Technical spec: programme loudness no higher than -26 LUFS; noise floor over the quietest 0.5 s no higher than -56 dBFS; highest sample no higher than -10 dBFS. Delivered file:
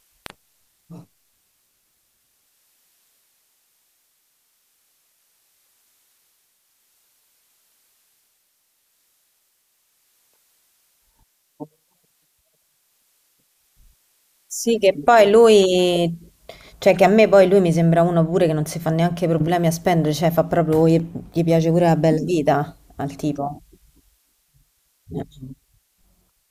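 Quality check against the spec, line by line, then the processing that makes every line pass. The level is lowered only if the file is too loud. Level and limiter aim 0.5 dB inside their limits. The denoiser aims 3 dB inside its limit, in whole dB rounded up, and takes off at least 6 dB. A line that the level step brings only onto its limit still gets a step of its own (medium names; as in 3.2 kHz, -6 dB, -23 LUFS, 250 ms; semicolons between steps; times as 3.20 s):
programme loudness -17.5 LUFS: fail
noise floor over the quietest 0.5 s -67 dBFS: pass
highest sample -3.0 dBFS: fail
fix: trim -9 dB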